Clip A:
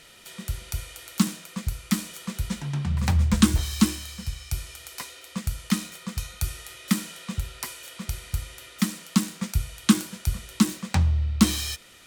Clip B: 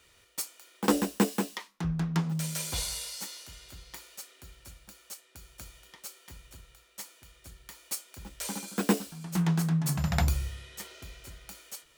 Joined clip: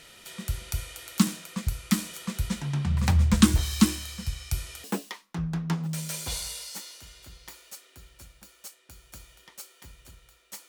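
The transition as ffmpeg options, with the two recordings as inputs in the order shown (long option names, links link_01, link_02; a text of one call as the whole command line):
ffmpeg -i cue0.wav -i cue1.wav -filter_complex "[0:a]apad=whole_dur=10.68,atrim=end=10.68,atrim=end=4.842[link_01];[1:a]atrim=start=1.298:end=7.14[link_02];[link_01][link_02]acrossfade=duration=0.004:curve1=hsin:curve2=hsin" out.wav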